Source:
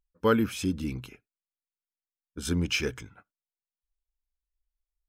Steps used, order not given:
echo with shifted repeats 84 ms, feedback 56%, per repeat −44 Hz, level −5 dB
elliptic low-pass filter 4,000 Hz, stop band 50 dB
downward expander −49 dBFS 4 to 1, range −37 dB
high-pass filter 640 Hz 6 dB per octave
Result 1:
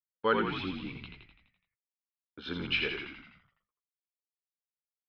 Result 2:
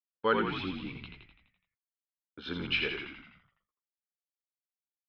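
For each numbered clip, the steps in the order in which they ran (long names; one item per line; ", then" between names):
high-pass filter, then downward expander, then echo with shifted repeats, then elliptic low-pass filter
high-pass filter, then downward expander, then elliptic low-pass filter, then echo with shifted repeats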